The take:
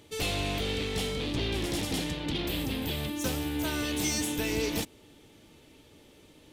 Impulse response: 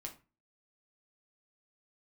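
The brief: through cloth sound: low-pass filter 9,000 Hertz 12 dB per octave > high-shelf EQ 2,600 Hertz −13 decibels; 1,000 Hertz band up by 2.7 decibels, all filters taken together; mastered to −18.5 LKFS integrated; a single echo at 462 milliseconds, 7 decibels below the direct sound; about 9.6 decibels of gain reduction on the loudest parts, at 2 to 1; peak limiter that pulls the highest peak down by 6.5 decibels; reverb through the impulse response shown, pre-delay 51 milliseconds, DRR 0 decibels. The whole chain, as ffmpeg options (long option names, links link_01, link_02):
-filter_complex "[0:a]equalizer=frequency=1000:width_type=o:gain=5.5,acompressor=threshold=-44dB:ratio=2,alimiter=level_in=8.5dB:limit=-24dB:level=0:latency=1,volume=-8.5dB,aecho=1:1:462:0.447,asplit=2[link_01][link_02];[1:a]atrim=start_sample=2205,adelay=51[link_03];[link_02][link_03]afir=irnorm=-1:irlink=0,volume=3dB[link_04];[link_01][link_04]amix=inputs=2:normalize=0,lowpass=9000,highshelf=frequency=2600:gain=-13,volume=19.5dB"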